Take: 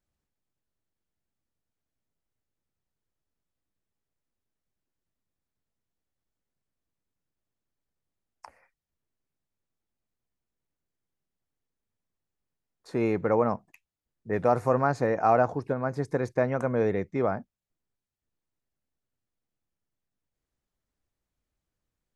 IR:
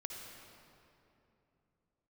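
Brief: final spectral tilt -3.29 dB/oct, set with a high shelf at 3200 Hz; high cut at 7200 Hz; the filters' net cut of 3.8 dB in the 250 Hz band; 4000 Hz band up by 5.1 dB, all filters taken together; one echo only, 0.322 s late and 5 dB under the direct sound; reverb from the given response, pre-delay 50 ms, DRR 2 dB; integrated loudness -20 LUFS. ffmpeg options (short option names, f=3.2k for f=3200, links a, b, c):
-filter_complex "[0:a]lowpass=7.2k,equalizer=f=250:t=o:g=-5,highshelf=f=3.2k:g=5,equalizer=f=4k:t=o:g=3,aecho=1:1:322:0.562,asplit=2[a][b];[1:a]atrim=start_sample=2205,adelay=50[c];[b][c]afir=irnorm=-1:irlink=0,volume=-0.5dB[d];[a][d]amix=inputs=2:normalize=0,volume=5dB"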